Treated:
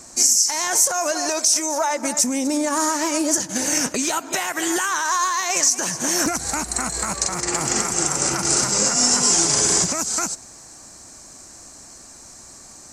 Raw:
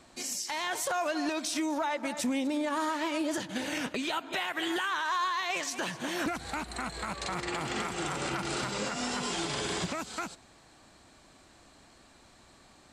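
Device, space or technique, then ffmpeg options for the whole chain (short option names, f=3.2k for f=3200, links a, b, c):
over-bright horn tweeter: -filter_complex "[0:a]highshelf=f=4.6k:t=q:w=3:g=10,alimiter=limit=-14.5dB:level=0:latency=1:release=297,asettb=1/sr,asplit=3[a][b][c];[a]atrim=end=1.114[d];[b]atrim=start=1.11:end=1.91,asetpts=PTS-STARTPTS,afade=t=in:d=0.004:c=qsin,afade=t=out:st=0.796:d=0.004:c=qsin,lowshelf=f=340:t=q:w=3:g=-6[e];[c]atrim=start=1.906[f];[d][e]acrossfade=d=0.004:c1=hsin:c2=qsin[g];[g][f]acrossfade=d=0.004:c1=qsin:c2=hsin,volume=9dB"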